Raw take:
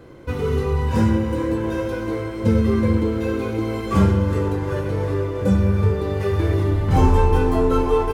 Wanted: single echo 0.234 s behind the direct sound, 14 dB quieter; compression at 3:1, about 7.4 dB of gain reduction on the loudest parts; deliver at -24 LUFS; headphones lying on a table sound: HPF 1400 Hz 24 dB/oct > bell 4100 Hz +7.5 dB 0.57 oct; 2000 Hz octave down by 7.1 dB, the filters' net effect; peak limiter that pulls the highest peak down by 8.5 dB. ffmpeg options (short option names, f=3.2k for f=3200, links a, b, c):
-af "equalizer=f=2k:t=o:g=-9,acompressor=threshold=-21dB:ratio=3,alimiter=limit=-19.5dB:level=0:latency=1,highpass=f=1.4k:w=0.5412,highpass=f=1.4k:w=1.3066,equalizer=f=4.1k:t=o:w=0.57:g=7.5,aecho=1:1:234:0.2,volume=22dB"